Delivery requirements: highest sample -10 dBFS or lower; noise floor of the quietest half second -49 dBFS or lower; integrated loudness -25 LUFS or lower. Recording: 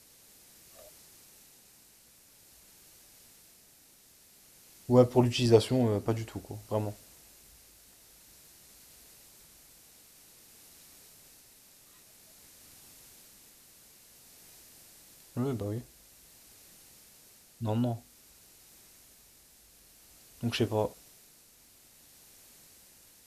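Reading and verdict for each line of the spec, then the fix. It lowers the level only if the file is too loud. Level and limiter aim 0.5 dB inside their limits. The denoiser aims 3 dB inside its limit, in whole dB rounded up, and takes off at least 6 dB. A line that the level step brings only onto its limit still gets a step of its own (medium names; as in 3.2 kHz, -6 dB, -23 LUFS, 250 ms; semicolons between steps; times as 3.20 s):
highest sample -9.0 dBFS: fail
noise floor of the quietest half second -60 dBFS: pass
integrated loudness -29.5 LUFS: pass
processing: peak limiter -10.5 dBFS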